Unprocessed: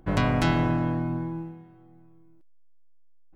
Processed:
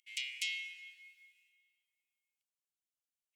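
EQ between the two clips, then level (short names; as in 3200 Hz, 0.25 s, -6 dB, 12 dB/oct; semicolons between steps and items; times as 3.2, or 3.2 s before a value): rippled Chebyshev high-pass 2100 Hz, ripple 6 dB; +1.0 dB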